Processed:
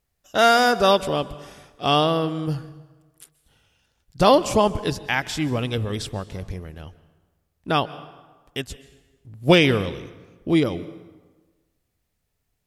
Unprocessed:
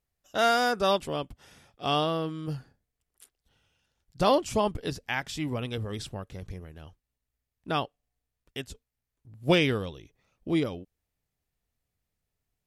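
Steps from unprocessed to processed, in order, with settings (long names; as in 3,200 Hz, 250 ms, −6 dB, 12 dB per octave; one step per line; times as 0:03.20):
dense smooth reverb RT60 1.3 s, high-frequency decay 0.7×, pre-delay 115 ms, DRR 16.5 dB
level +7.5 dB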